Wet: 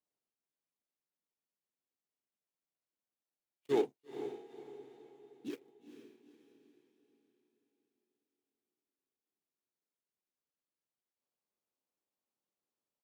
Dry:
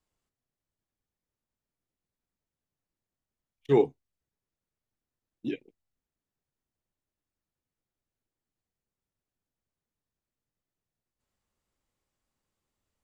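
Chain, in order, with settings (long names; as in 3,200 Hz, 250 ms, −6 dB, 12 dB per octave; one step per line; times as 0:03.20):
running median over 25 samples
high-pass filter 270 Hz 12 dB per octave
high-shelf EQ 3,400 Hz +11.5 dB
on a send: feedback delay with all-pass diffusion 465 ms, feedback 43%, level −10.5 dB
on the sum: pitch-shifted copies added −3 semitones −11 dB
level −7.5 dB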